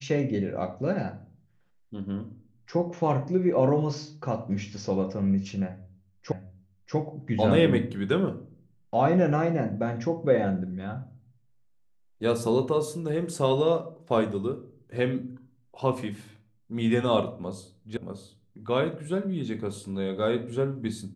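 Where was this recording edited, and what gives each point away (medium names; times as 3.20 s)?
6.32 s: repeat of the last 0.64 s
17.97 s: sound stops dead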